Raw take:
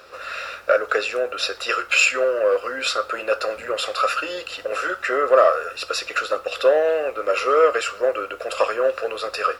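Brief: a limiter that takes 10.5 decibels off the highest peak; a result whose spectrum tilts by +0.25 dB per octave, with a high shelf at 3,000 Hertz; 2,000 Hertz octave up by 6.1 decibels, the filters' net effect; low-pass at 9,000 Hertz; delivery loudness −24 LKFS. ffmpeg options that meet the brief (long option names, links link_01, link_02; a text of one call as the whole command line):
ffmpeg -i in.wav -af "lowpass=9000,equalizer=frequency=2000:width_type=o:gain=5,highshelf=frequency=3000:gain=8,volume=-4dB,alimiter=limit=-13dB:level=0:latency=1" out.wav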